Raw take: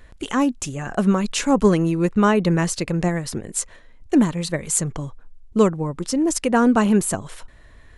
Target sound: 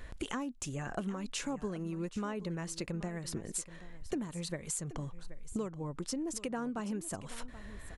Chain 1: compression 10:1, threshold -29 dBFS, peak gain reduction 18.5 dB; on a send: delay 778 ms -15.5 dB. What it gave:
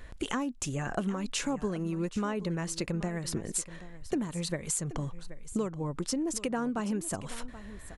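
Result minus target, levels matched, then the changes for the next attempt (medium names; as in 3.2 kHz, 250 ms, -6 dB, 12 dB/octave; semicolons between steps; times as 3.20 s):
compression: peak gain reduction -5.5 dB
change: compression 10:1, threshold -35 dBFS, peak gain reduction 24 dB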